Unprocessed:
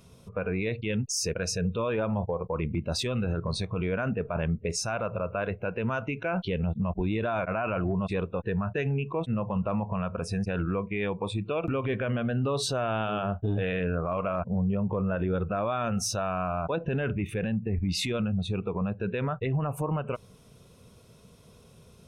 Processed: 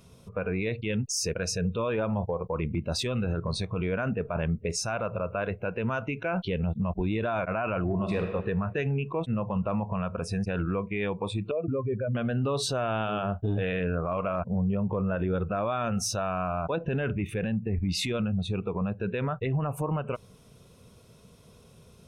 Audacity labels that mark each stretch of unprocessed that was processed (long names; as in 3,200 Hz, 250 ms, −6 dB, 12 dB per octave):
7.850000	8.320000	thrown reverb, RT60 1.4 s, DRR 4 dB
11.510000	12.150000	expanding power law on the bin magnitudes exponent 2.2